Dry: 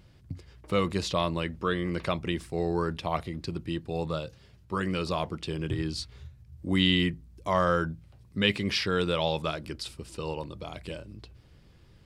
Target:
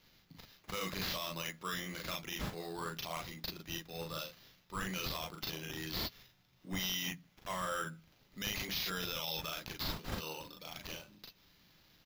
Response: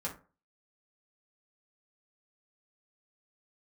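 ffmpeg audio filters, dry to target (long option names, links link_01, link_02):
-filter_complex "[0:a]highpass=frequency=140:width=0.5412,highpass=frequency=140:width=1.3066,aderivative,aecho=1:1:38|48:0.668|0.422,asplit=2[link_01][link_02];[1:a]atrim=start_sample=2205[link_03];[link_02][link_03]afir=irnorm=-1:irlink=0,volume=-18dB[link_04];[link_01][link_04]amix=inputs=2:normalize=0,aeval=exprs='0.0668*(abs(mod(val(0)/0.0668+3,4)-2)-1)':channel_layout=same,alimiter=level_in=10dB:limit=-24dB:level=0:latency=1:release=23,volume=-10dB,acrusher=samples=5:mix=1:aa=0.000001,bass=frequency=250:gain=12,treble=frequency=4000:gain=-1,volume=5.5dB"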